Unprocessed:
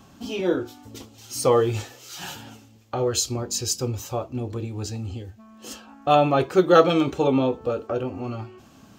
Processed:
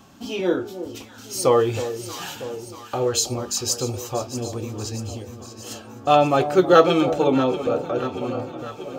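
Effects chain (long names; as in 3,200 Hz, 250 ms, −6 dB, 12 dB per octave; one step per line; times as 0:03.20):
low-shelf EQ 140 Hz −6 dB
delay that swaps between a low-pass and a high-pass 318 ms, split 880 Hz, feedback 80%, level −11 dB
level +2 dB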